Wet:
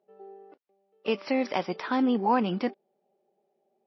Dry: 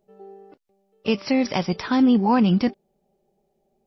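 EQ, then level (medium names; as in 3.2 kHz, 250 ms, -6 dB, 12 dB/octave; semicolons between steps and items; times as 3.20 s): high-pass 350 Hz 12 dB/octave; low-pass 3.2 kHz 6 dB/octave; distance through air 94 m; -1.5 dB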